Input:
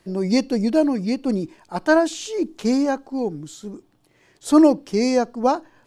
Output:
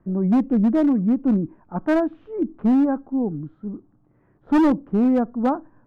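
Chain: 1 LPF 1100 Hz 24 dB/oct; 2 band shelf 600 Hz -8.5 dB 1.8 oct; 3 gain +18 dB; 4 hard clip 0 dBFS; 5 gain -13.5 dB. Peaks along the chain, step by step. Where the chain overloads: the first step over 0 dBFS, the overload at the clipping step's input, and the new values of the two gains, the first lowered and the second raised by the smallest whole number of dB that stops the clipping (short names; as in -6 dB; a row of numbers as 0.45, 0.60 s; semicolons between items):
-4.5, -8.5, +9.5, 0.0, -13.5 dBFS; step 3, 9.5 dB; step 3 +8 dB, step 5 -3.5 dB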